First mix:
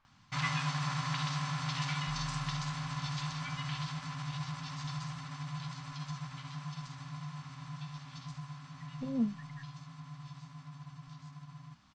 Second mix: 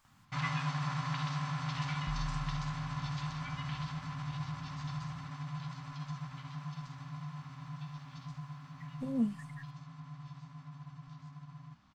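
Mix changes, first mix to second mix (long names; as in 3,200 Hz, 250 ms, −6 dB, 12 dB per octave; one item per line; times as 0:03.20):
speech: remove high-frequency loss of the air 220 metres
first sound: add high-shelf EQ 3,000 Hz −9 dB
second sound +9.5 dB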